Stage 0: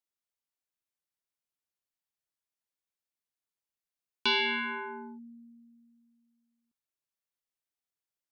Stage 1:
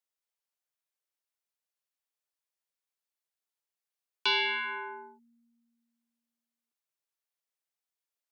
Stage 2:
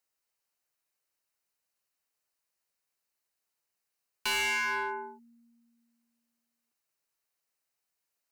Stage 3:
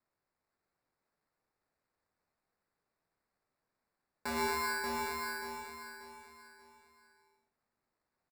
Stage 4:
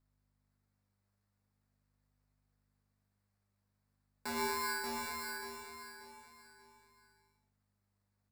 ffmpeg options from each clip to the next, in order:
-af "highpass=f=390:w=0.5412,highpass=f=390:w=1.3066"
-af "aeval=exprs='0.15*(cos(1*acos(clip(val(0)/0.15,-1,1)))-cos(1*PI/2))+0.0211*(cos(2*acos(clip(val(0)/0.15,-1,1)))-cos(2*PI/2))':c=same,bandreject=f=3400:w=6.4,asoftclip=type=hard:threshold=0.0188,volume=2.11"
-filter_complex "[0:a]acrossover=split=480[s0][s1];[s1]acrusher=samples=14:mix=1:aa=0.000001[s2];[s0][s2]amix=inputs=2:normalize=0,flanger=delay=4:depth=8.7:regen=87:speed=0.79:shape=triangular,aecho=1:1:584|1168|1752|2336:0.631|0.221|0.0773|0.0271"
-filter_complex "[0:a]aeval=exprs='val(0)+0.000224*(sin(2*PI*50*n/s)+sin(2*PI*2*50*n/s)/2+sin(2*PI*3*50*n/s)/3+sin(2*PI*4*50*n/s)/4+sin(2*PI*5*50*n/s)/5)':c=same,acrossover=split=3200[s0][s1];[s0]flanger=delay=7.8:depth=2.1:regen=-37:speed=0.44:shape=sinusoidal[s2];[s1]acrusher=bits=3:mode=log:mix=0:aa=0.000001[s3];[s2][s3]amix=inputs=2:normalize=0"

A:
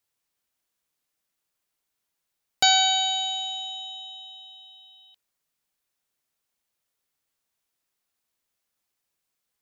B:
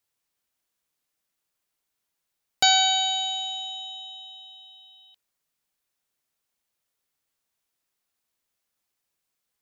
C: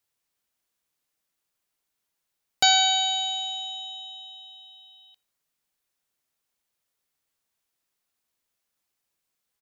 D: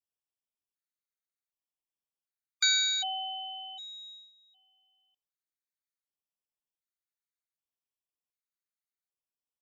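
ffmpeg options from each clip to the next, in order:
-af anull
-filter_complex "[0:a]asplit=2[s0][s1];[s1]adelay=86,lowpass=f=2000:p=1,volume=0.075,asplit=2[s2][s3];[s3]adelay=86,lowpass=f=2000:p=1,volume=0.49,asplit=2[s4][s5];[s5]adelay=86,lowpass=f=2000:p=1,volume=0.49[s6];[s0][s2][s4][s6]amix=inputs=4:normalize=0"
-af "agate=range=0.251:threshold=0.00891:ratio=16:detection=peak,afftfilt=real='re*gt(sin(2*PI*0.66*pts/sr)*(1-2*mod(floor(b*sr/1024/1200),2)),0)':imag='im*gt(sin(2*PI*0.66*pts/sr)*(1-2*mod(floor(b*sr/1024/1200),2)),0)':win_size=1024:overlap=0.75,volume=0.596"

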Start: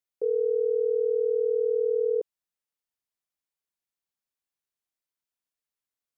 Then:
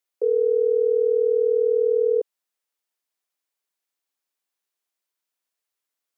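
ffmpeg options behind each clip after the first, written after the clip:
-af "highpass=310,volume=2"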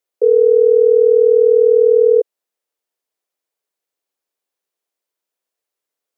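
-af "equalizer=f=470:t=o:w=1.3:g=9.5"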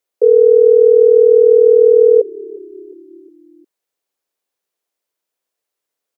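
-filter_complex "[0:a]asplit=5[s0][s1][s2][s3][s4];[s1]adelay=357,afreqshift=-34,volume=0.075[s5];[s2]adelay=714,afreqshift=-68,volume=0.0422[s6];[s3]adelay=1071,afreqshift=-102,volume=0.0234[s7];[s4]adelay=1428,afreqshift=-136,volume=0.0132[s8];[s0][s5][s6][s7][s8]amix=inputs=5:normalize=0,volume=1.33"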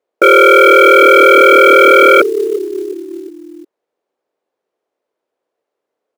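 -af "bandpass=f=450:t=q:w=0.95:csg=0,aeval=exprs='0.891*sin(PI/2*3.98*val(0)/0.891)':c=same,acrusher=bits=6:mode=log:mix=0:aa=0.000001,volume=0.841"

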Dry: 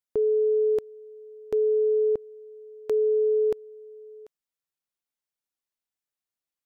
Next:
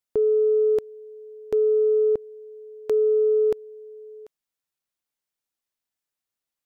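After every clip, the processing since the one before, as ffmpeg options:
-af "acontrast=48,volume=0.708"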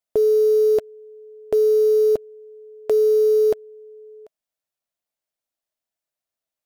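-filter_complex "[0:a]equalizer=f=640:t=o:w=0.37:g=11.5,asplit=2[s0][s1];[s1]acrusher=bits=5:mix=0:aa=0.000001,volume=0.631[s2];[s0][s2]amix=inputs=2:normalize=0,volume=0.794"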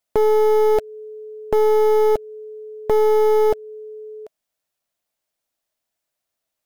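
-filter_complex "[0:a]asplit=2[s0][s1];[s1]acompressor=threshold=0.0501:ratio=6,volume=0.891[s2];[s0][s2]amix=inputs=2:normalize=0,aeval=exprs='clip(val(0),-1,0.0841)':c=same,volume=1.19"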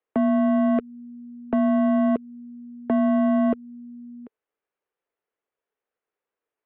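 -filter_complex "[0:a]highpass=f=150:t=q:w=0.5412,highpass=f=150:t=q:w=1.307,lowpass=f=3500:t=q:w=0.5176,lowpass=f=3500:t=q:w=0.7071,lowpass=f=3500:t=q:w=1.932,afreqshift=-190,acrossover=split=260 2200:gain=0.251 1 0.2[s0][s1][s2];[s0][s1][s2]amix=inputs=3:normalize=0"

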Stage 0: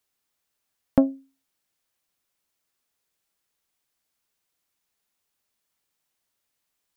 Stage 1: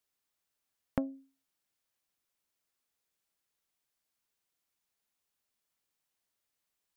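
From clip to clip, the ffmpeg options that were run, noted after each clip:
-af "acompressor=threshold=0.0708:ratio=6,volume=0.501"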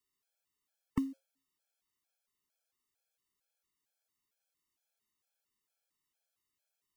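-af "acrusher=bits=6:mode=log:mix=0:aa=0.000001,afftfilt=real='re*gt(sin(2*PI*2.2*pts/sr)*(1-2*mod(floor(b*sr/1024/440),2)),0)':imag='im*gt(sin(2*PI*2.2*pts/sr)*(1-2*mod(floor(b*sr/1024/440),2)),0)':win_size=1024:overlap=0.75,volume=1.12"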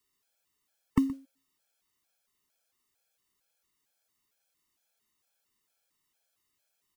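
-af "aecho=1:1:122:0.119,volume=2.37"

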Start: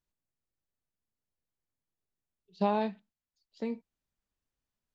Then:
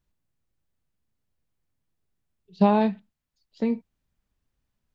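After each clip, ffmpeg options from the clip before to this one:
-af "bass=f=250:g=7,treble=f=4000:g=-4,volume=2.24"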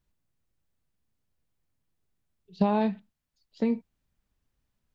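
-af "acompressor=threshold=0.1:ratio=6"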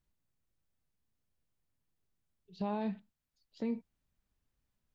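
-af "alimiter=limit=0.0708:level=0:latency=1,volume=0.596"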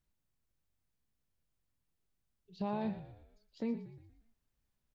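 -filter_complex "[0:a]asplit=6[s0][s1][s2][s3][s4][s5];[s1]adelay=118,afreqshift=-47,volume=0.224[s6];[s2]adelay=236,afreqshift=-94,volume=0.11[s7];[s3]adelay=354,afreqshift=-141,volume=0.0537[s8];[s4]adelay=472,afreqshift=-188,volume=0.0263[s9];[s5]adelay=590,afreqshift=-235,volume=0.0129[s10];[s0][s6][s7][s8][s9][s10]amix=inputs=6:normalize=0,volume=0.891"

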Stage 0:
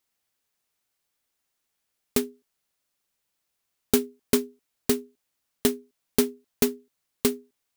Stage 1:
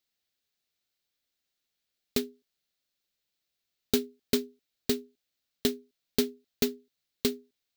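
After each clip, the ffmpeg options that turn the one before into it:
-af "equalizer=f=1000:t=o:w=0.67:g=-8,equalizer=f=4000:t=o:w=0.67:g=7,equalizer=f=10000:t=o:w=0.67:g=-7,volume=0.596"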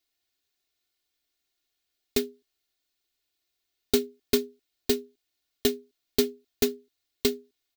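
-af "aecho=1:1:2.8:0.96"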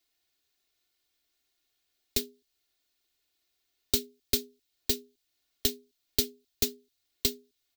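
-filter_complex "[0:a]acrossover=split=140|3000[s0][s1][s2];[s1]acompressor=threshold=0.00355:ratio=2[s3];[s0][s3][s2]amix=inputs=3:normalize=0,volume=1.33"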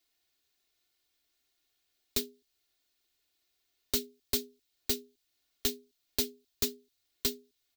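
-af "volume=13.3,asoftclip=hard,volume=0.075"

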